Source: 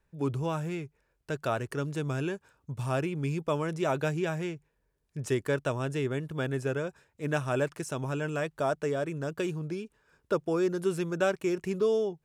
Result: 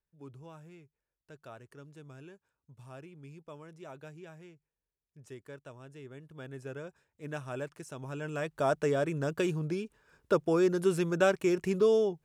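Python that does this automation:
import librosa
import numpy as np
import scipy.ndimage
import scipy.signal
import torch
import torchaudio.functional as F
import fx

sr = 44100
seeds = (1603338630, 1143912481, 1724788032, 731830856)

y = fx.gain(x, sr, db=fx.line((5.92, -18.5), (6.86, -9.5), (7.97, -9.5), (8.75, 1.5)))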